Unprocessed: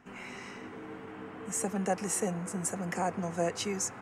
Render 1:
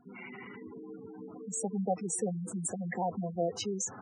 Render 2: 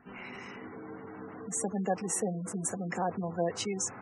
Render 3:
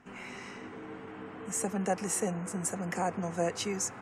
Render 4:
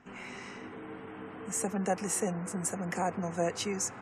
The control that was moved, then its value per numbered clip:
spectral gate, under each frame's peak: -10 dB, -20 dB, -50 dB, -40 dB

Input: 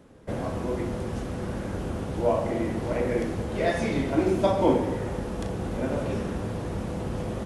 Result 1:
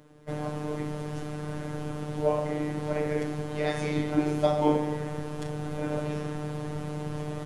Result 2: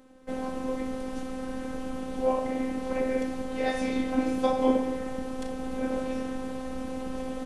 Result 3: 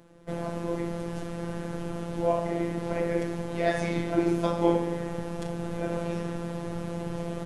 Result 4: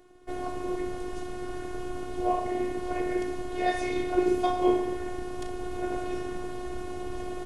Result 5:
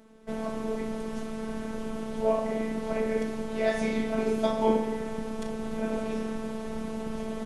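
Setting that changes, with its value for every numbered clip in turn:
robot voice, frequency: 150 Hz, 260 Hz, 170 Hz, 360 Hz, 220 Hz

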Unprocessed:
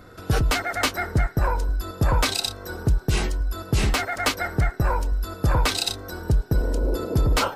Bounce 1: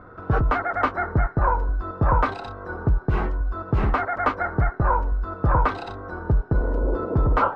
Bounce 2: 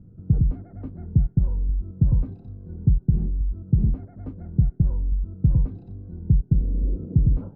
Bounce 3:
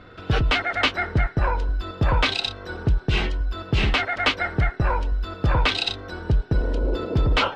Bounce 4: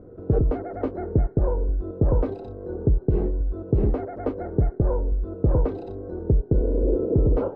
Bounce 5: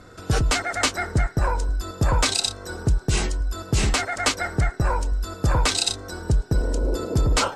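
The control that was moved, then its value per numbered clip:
resonant low-pass, frequency: 1.2 kHz, 170 Hz, 3.1 kHz, 440 Hz, 7.9 kHz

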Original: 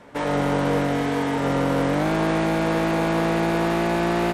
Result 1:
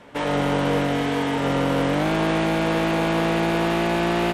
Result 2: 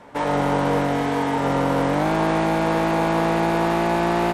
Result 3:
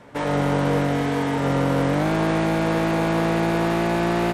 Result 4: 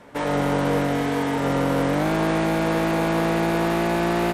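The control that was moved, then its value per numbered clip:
peaking EQ, frequency: 3 kHz, 880 Hz, 120 Hz, 13 kHz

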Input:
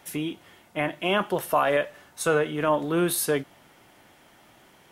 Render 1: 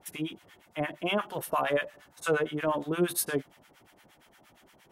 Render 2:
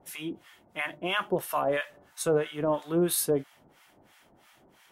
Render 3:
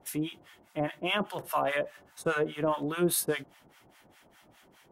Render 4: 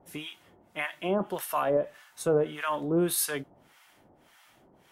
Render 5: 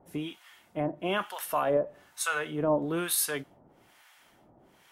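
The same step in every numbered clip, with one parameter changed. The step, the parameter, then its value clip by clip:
harmonic tremolo, rate: 8.6 Hz, 3 Hz, 4.9 Hz, 1.7 Hz, 1.1 Hz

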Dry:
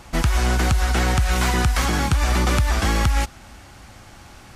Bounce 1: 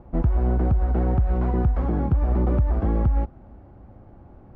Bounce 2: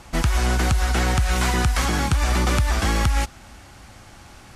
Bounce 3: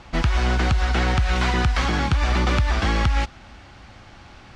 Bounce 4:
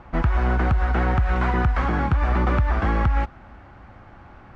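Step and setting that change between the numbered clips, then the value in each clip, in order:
Chebyshev low-pass, frequency: 510 Hz, 12 kHz, 3.9 kHz, 1.4 kHz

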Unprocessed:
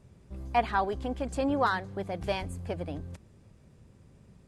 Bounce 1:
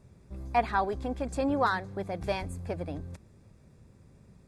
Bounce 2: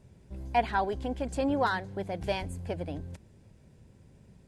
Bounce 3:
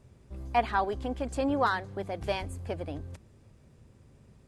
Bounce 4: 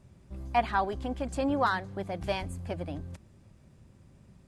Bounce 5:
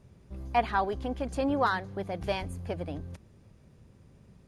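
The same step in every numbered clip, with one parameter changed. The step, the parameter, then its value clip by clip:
band-stop, frequency: 3 kHz, 1.2 kHz, 180 Hz, 450 Hz, 7.8 kHz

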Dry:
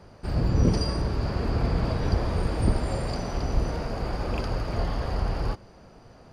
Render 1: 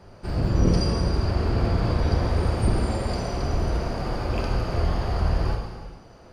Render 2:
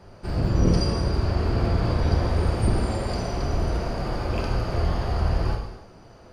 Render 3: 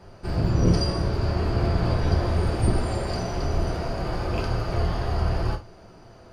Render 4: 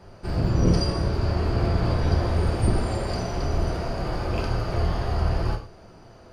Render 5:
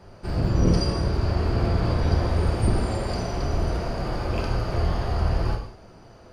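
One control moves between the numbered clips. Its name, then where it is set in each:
gated-style reverb, gate: 520 ms, 350 ms, 100 ms, 150 ms, 240 ms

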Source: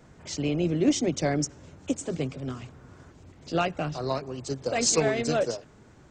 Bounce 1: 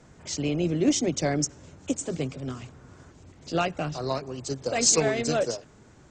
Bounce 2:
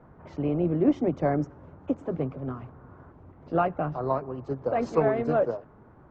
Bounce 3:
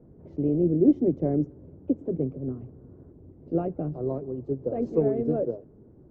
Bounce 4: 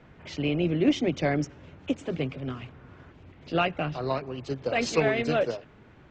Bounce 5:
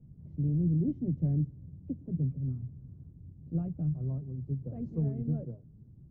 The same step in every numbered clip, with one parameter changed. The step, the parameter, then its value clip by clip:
resonant low-pass, frequency: 7.9 kHz, 1.1 kHz, 400 Hz, 2.8 kHz, 150 Hz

